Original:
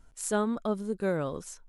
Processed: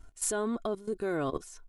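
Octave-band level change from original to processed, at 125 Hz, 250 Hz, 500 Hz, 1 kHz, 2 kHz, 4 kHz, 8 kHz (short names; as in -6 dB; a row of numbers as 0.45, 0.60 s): -5.5, -3.5, -2.0, -2.0, -2.0, -0.5, +3.0 dB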